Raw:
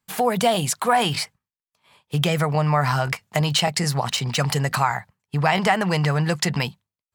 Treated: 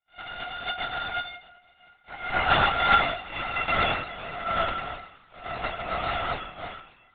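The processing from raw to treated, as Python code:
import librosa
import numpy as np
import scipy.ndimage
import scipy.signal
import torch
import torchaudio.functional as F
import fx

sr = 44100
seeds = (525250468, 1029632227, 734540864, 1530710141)

y = np.r_[np.sort(x[:len(x) // 64 * 64].reshape(-1, 64), axis=1).ravel(), x[len(x) // 64 * 64:]]
y = fx.doppler_pass(y, sr, speed_mps=12, closest_m=12.0, pass_at_s=3.15)
y = fx.low_shelf_res(y, sr, hz=680.0, db=-12.0, q=1.5)
y = fx.auto_swell(y, sr, attack_ms=309.0)
y = fx.rev_double_slope(y, sr, seeds[0], early_s=0.66, late_s=2.1, knee_db=-19, drr_db=-6.0)
y = fx.lpc_vocoder(y, sr, seeds[1], excitation='whisper', order=10)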